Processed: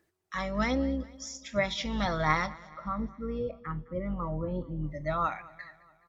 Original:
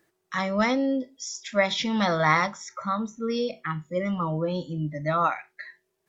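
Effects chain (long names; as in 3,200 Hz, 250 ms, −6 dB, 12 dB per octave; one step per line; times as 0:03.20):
sub-octave generator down 2 octaves, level −5 dB
0:02.53–0:04.84: low-pass filter 1,400 Hz 12 dB per octave
phase shifter 1.3 Hz, delay 1.9 ms, feedback 26%
repeating echo 211 ms, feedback 54%, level −21 dB
level −6.5 dB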